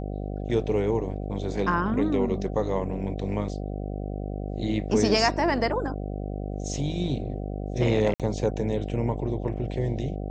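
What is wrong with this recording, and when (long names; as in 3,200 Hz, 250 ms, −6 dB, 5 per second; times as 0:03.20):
mains buzz 50 Hz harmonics 15 −32 dBFS
0:08.14–0:08.20: drop-out 57 ms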